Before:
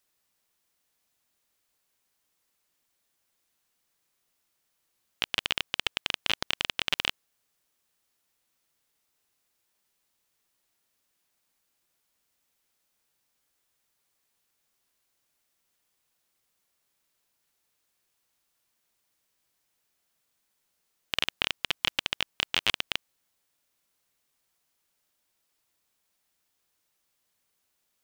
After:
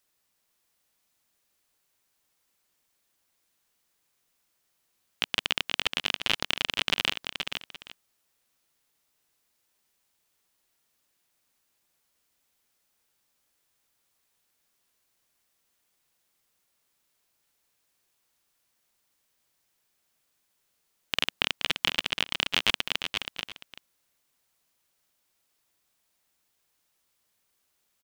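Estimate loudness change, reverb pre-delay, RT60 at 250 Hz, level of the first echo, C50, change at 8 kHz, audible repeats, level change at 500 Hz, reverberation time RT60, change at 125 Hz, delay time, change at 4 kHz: +1.0 dB, no reverb, no reverb, -6.5 dB, no reverb, +2.0 dB, 2, +2.5 dB, no reverb, +3.0 dB, 475 ms, +2.0 dB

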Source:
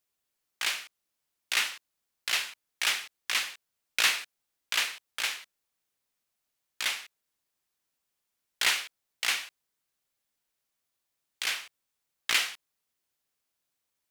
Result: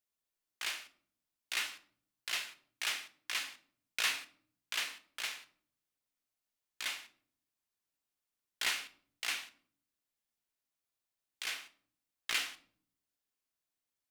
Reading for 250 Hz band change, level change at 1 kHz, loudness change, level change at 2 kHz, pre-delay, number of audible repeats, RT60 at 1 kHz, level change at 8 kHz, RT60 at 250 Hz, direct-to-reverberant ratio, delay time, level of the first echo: -5.5 dB, -8.0 dB, -8.0 dB, -8.0 dB, 3 ms, no echo, 0.45 s, -8.0 dB, 0.95 s, 9.0 dB, no echo, no echo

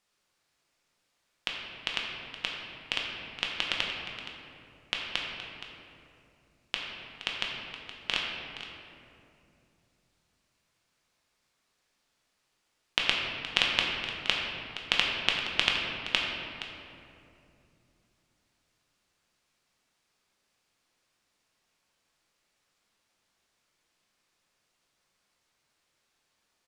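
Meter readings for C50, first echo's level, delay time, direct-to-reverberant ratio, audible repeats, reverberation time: 0.5 dB, -13.0 dB, 470 ms, -2.0 dB, 1, 2.7 s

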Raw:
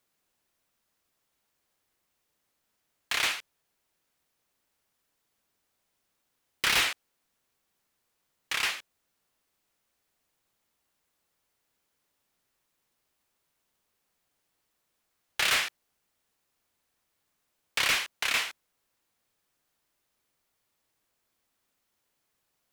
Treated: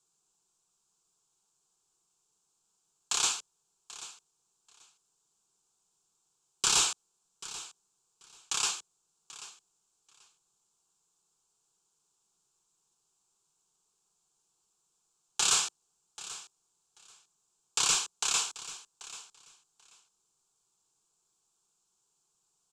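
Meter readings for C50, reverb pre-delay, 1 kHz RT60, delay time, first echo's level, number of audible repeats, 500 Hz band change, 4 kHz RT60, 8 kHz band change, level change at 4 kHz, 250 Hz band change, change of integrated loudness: no reverb, no reverb, no reverb, 786 ms, -16.5 dB, 2, -4.5 dB, no reverb, +8.5 dB, -1.5 dB, -3.5 dB, -1.5 dB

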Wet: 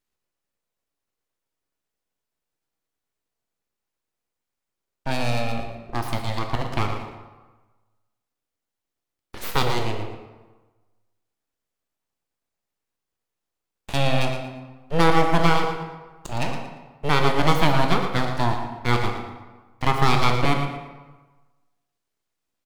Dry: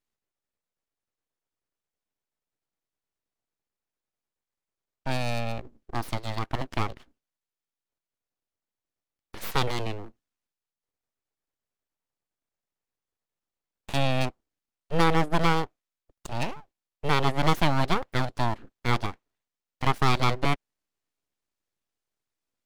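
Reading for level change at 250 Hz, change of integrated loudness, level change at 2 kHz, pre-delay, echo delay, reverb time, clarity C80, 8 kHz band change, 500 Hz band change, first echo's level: +4.5 dB, +4.5 dB, +5.0 dB, 11 ms, 115 ms, 1.3 s, 5.5 dB, +4.5 dB, +5.5 dB, -9.5 dB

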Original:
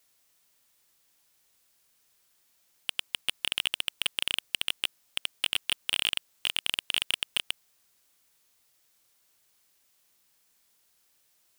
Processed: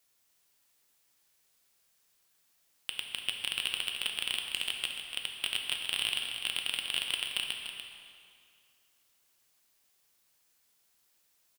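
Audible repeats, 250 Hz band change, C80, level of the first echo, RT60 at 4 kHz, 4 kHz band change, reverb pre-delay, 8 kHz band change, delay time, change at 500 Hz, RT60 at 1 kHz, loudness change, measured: 1, -3.0 dB, 3.5 dB, -9.0 dB, 1.9 s, -2.5 dB, 5 ms, -3.0 dB, 293 ms, -3.0 dB, 2.4 s, -3.0 dB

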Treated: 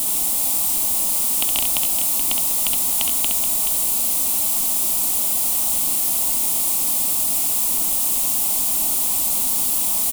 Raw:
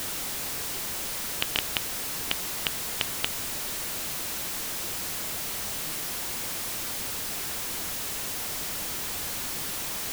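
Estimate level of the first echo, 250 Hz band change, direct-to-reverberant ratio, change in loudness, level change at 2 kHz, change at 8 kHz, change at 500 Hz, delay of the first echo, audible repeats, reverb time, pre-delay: -5.0 dB, +6.0 dB, no reverb, +13.0 dB, -1.5 dB, +13.5 dB, +3.0 dB, 66 ms, 2, no reverb, no reverb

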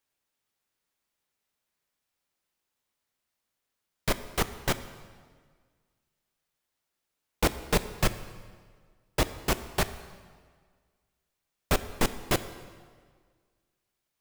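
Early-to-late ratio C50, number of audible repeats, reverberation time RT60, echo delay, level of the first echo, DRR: 13.5 dB, no echo, 1.7 s, no echo, no echo, 11.5 dB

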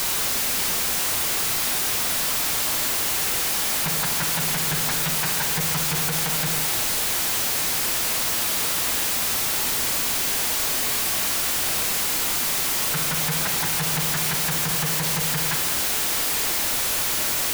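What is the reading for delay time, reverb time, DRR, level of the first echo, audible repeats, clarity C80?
no echo, 1.4 s, 4.5 dB, no echo, no echo, 8.0 dB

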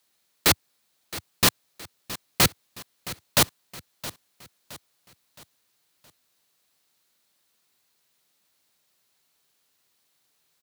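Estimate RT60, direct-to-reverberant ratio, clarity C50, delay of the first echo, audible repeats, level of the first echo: no reverb, no reverb, no reverb, 668 ms, 3, -16.0 dB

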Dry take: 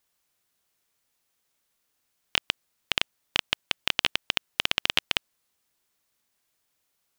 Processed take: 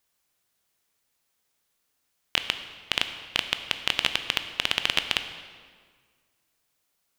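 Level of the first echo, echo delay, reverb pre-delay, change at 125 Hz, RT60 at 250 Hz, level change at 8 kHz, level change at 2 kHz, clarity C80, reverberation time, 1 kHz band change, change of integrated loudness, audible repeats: no echo, no echo, 13 ms, +0.5 dB, 1.9 s, +0.5 dB, +0.5 dB, 10.5 dB, 1.8 s, +0.5 dB, +0.5 dB, no echo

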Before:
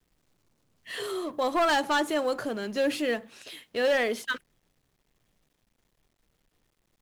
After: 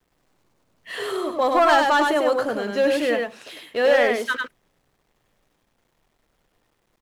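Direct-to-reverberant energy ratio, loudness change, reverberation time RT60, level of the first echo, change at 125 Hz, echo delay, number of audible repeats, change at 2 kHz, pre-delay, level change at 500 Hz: no reverb, +7.5 dB, no reverb, -3.5 dB, no reading, 99 ms, 1, +7.0 dB, no reverb, +8.0 dB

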